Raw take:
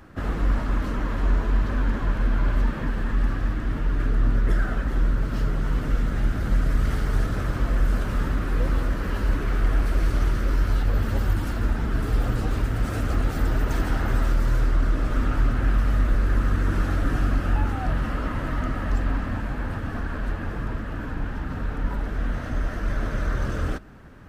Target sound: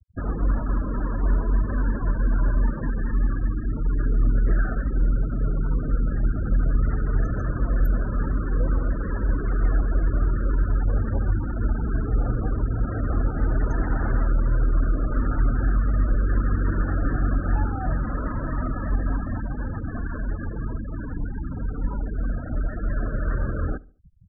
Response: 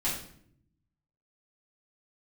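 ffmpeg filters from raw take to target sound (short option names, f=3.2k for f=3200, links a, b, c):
-filter_complex "[0:a]asettb=1/sr,asplit=3[a][b][c];[a]atrim=end=7.234[d];[b]atrim=start=7.23:end=7.88,asetpts=PTS-STARTPTS,afade=t=in:d=0.004:c=qsin,afade=t=out:st=0.646:d=0.004:c=qsin,bass=f=250:g=0,treble=f=4k:g=15[e];[c]atrim=start=7.876[f];[d][e]acrossfade=d=0.004:c1=hsin:c2=qsin[g];[g][f]acrossfade=d=0.004:c1=qsin:c2=hsin,afftfilt=real='re*gte(hypot(re,im),0.0447)':imag='im*gte(hypot(re,im),0.0447)':win_size=1024:overlap=0.75,asplit=2[h][i];[i]adelay=72,lowpass=f=1.2k:p=1,volume=-22dB,asplit=2[j][k];[k]adelay=72,lowpass=f=1.2k:p=1,volume=0.43,asplit=2[l][m];[m]adelay=72,lowpass=f=1.2k:p=1,volume=0.43[n];[h][j][l][n]amix=inputs=4:normalize=0"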